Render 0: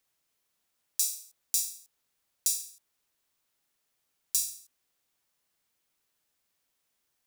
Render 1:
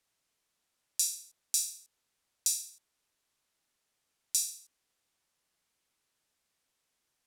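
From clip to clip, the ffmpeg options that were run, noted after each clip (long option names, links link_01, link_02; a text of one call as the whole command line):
ffmpeg -i in.wav -af "lowpass=11000" out.wav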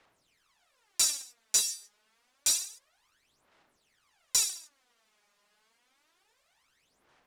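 ffmpeg -i in.wav -filter_complex "[0:a]aphaser=in_gain=1:out_gain=1:delay=4.9:decay=0.75:speed=0.28:type=sinusoidal,asplit=2[link_01][link_02];[link_02]highpass=frequency=720:poles=1,volume=9dB,asoftclip=type=tanh:threshold=-10dB[link_03];[link_01][link_03]amix=inputs=2:normalize=0,lowpass=frequency=1800:poles=1,volume=-6dB,volume=8dB" out.wav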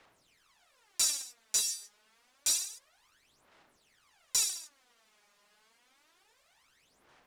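ffmpeg -i in.wav -af "alimiter=limit=-20dB:level=0:latency=1:release=275,volume=3.5dB" out.wav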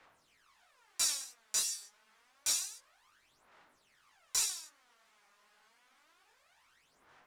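ffmpeg -i in.wav -filter_complex "[0:a]acrossover=split=880|1800[link_01][link_02][link_03];[link_02]acontrast=86[link_04];[link_01][link_04][link_03]amix=inputs=3:normalize=0,flanger=delay=18:depth=6:speed=2.9" out.wav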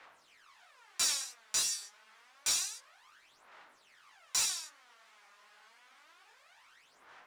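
ffmpeg -i in.wav -filter_complex "[0:a]asplit=2[link_01][link_02];[link_02]highpass=frequency=720:poles=1,volume=13dB,asoftclip=type=tanh:threshold=-18.5dB[link_03];[link_01][link_03]amix=inputs=2:normalize=0,lowpass=frequency=4900:poles=1,volume=-6dB" out.wav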